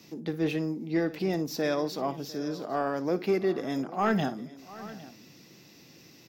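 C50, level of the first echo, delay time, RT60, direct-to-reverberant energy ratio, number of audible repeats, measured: no reverb audible, −16.5 dB, 58 ms, no reverb audible, no reverb audible, 3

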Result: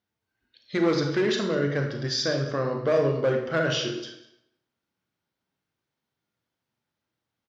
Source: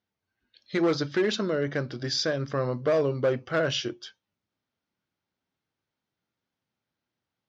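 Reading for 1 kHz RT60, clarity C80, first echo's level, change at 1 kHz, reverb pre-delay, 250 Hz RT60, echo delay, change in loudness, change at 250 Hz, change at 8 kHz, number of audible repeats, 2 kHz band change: 0.80 s, 8.0 dB, −19.5 dB, +2.0 dB, 31 ms, 0.75 s, 198 ms, +2.0 dB, +2.0 dB, can't be measured, 1, +2.0 dB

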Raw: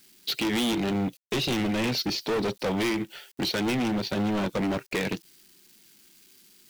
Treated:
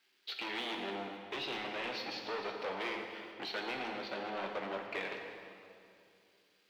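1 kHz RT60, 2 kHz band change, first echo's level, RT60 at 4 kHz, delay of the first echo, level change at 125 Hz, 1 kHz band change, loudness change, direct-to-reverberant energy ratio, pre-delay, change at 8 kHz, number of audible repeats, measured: 2.4 s, −6.5 dB, no echo audible, 1.9 s, no echo audible, −25.0 dB, −6.0 dB, −12.0 dB, 2.0 dB, 8 ms, −21.5 dB, no echo audible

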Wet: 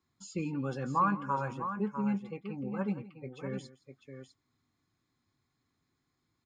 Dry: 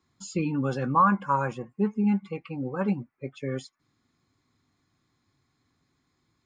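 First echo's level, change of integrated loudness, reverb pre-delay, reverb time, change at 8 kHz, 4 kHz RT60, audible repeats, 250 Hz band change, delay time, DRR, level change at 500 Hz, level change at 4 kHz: −18.5 dB, −7.0 dB, no reverb audible, no reverb audible, can't be measured, no reverb audible, 2, −7.0 dB, 167 ms, no reverb audible, −7.0 dB, −7.0 dB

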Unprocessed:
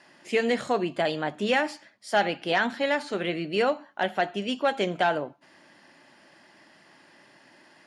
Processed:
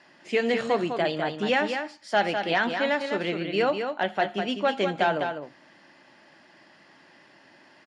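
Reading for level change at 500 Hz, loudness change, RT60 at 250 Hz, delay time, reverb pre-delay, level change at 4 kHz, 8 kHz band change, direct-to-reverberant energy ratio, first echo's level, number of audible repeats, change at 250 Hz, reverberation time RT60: +1.0 dB, +0.5 dB, no reverb audible, 202 ms, no reverb audible, +0.5 dB, can't be measured, no reverb audible, −6.5 dB, 1, +0.5 dB, no reverb audible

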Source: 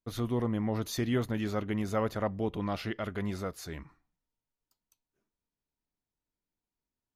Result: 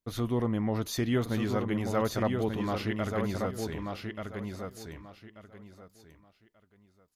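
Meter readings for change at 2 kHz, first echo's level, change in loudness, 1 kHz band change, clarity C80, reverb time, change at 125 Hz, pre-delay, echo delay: +3.0 dB, −5.0 dB, +1.5 dB, +2.5 dB, no reverb audible, no reverb audible, +2.5 dB, no reverb audible, 1,185 ms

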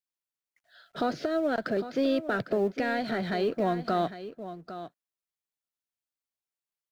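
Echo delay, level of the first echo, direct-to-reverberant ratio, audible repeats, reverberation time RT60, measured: 803 ms, −12.5 dB, no reverb audible, 1, no reverb audible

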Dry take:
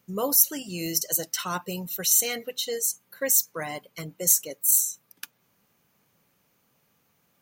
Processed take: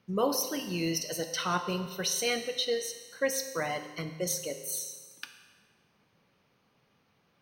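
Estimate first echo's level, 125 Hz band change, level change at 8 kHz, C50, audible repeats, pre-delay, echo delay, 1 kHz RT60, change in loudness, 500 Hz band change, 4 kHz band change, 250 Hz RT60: no echo audible, +0.5 dB, −11.0 dB, 8.5 dB, no echo audible, 8 ms, no echo audible, 1.4 s, −8.5 dB, +1.0 dB, −1.0 dB, 1.4 s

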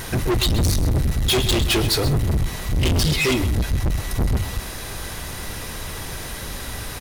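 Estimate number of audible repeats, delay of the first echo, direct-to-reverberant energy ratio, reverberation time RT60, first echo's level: 1, 129 ms, no reverb audible, no reverb audible, −12.5 dB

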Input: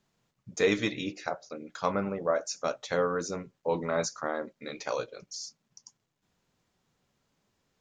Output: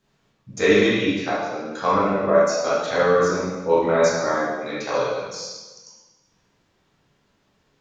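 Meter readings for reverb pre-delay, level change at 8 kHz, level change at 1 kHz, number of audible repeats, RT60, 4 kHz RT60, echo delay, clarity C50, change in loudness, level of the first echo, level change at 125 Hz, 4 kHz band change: 6 ms, +6.0 dB, +11.5 dB, no echo audible, 1.2 s, 1.1 s, no echo audible, −1.5 dB, +11.0 dB, no echo audible, +9.0 dB, +9.0 dB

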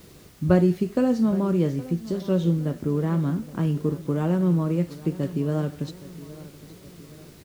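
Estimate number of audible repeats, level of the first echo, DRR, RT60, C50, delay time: 3, −17.5 dB, no reverb audible, no reverb audible, no reverb audible, 817 ms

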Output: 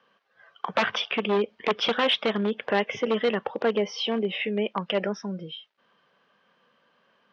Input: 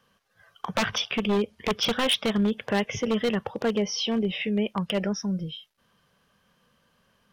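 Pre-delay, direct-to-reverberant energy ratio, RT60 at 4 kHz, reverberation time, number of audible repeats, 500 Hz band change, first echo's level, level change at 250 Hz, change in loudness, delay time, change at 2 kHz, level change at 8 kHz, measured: no reverb audible, no reverb audible, no reverb audible, no reverb audible, no echo audible, +2.5 dB, no echo audible, −4.0 dB, 0.0 dB, no echo audible, +2.5 dB, −11.0 dB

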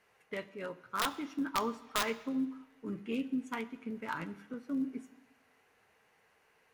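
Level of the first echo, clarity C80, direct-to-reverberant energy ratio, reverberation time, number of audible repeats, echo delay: no echo audible, 18.5 dB, 11.5 dB, 1.1 s, no echo audible, no echo audible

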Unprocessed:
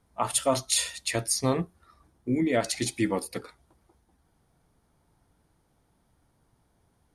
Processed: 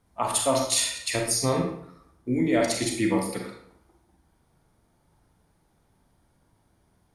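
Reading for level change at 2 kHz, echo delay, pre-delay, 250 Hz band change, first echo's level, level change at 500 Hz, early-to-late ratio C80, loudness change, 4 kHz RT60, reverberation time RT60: +2.5 dB, no echo audible, 32 ms, +3.0 dB, no echo audible, +2.5 dB, 7.5 dB, +2.5 dB, 0.50 s, 0.65 s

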